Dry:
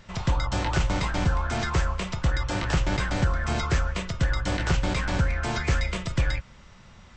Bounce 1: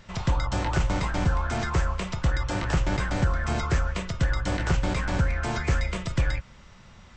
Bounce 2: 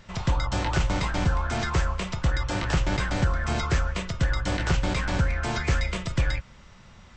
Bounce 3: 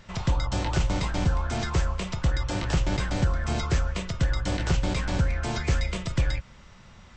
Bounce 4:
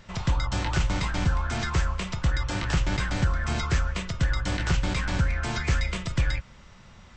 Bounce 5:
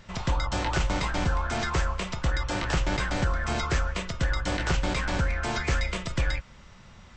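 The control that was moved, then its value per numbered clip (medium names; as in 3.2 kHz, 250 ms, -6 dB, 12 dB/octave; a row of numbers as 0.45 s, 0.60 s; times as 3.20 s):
dynamic bell, frequency: 3.8 kHz, 9.9 kHz, 1.5 kHz, 560 Hz, 110 Hz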